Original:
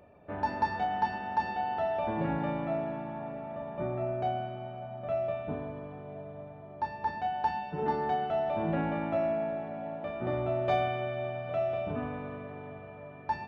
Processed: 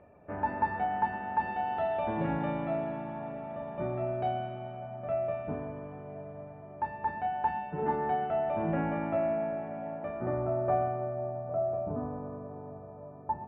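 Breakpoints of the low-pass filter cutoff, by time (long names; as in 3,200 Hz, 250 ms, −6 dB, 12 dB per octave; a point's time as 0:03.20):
low-pass filter 24 dB per octave
0:01.29 2,400 Hz
0:01.89 3,700 Hz
0:04.40 3,700 Hz
0:05.10 2,500 Hz
0:09.90 2,500 Hz
0:10.37 1,700 Hz
0:11.32 1,100 Hz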